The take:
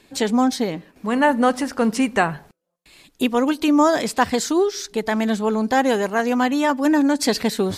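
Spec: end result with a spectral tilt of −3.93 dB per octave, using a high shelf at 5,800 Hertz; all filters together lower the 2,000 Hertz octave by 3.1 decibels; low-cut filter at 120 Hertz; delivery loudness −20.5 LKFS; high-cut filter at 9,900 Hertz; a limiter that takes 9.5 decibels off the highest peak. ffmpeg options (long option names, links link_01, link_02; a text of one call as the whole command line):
ffmpeg -i in.wav -af "highpass=120,lowpass=9900,equalizer=frequency=2000:width_type=o:gain=-4.5,highshelf=frequency=5800:gain=5.5,volume=2dB,alimiter=limit=-11.5dB:level=0:latency=1" out.wav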